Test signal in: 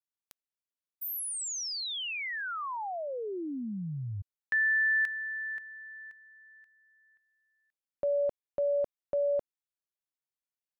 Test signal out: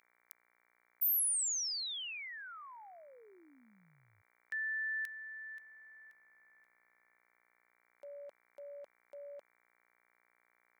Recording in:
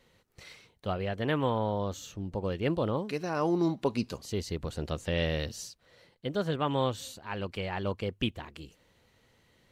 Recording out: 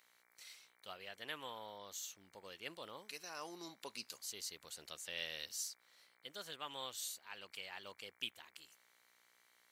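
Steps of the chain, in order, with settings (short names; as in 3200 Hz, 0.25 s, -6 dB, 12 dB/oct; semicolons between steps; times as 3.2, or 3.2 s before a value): buzz 60 Hz, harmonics 39, -59 dBFS -2 dB/oct; differentiator; gain +1 dB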